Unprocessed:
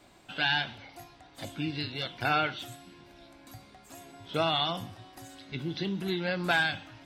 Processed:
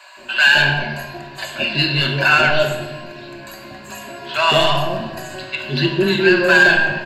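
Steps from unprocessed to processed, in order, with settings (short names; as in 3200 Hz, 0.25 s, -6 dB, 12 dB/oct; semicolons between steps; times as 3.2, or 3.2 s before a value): overdrive pedal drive 17 dB, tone 2200 Hz, clips at -12.5 dBFS; ripple EQ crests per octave 1.4, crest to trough 12 dB; bands offset in time highs, lows 0.17 s, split 770 Hz; shoebox room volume 810 m³, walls mixed, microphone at 1.1 m; maximiser +9.5 dB; gain -1 dB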